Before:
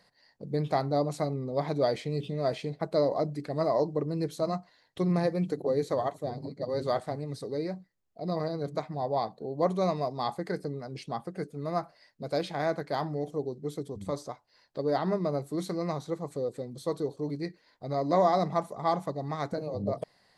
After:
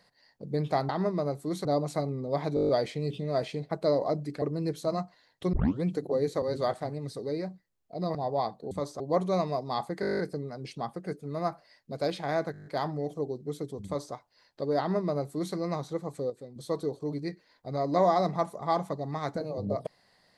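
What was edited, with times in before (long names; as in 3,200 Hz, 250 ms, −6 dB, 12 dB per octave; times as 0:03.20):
0:01.79: stutter 0.02 s, 8 plays
0:03.52–0:03.97: remove
0:05.08: tape start 0.31 s
0:05.97–0:06.68: remove
0:08.41–0:08.93: remove
0:10.50: stutter 0.02 s, 10 plays
0:12.83: stutter 0.02 s, 8 plays
0:14.02–0:14.31: duplicate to 0:09.49
0:14.96–0:15.72: duplicate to 0:00.89
0:16.47–0:16.73: clip gain −7.5 dB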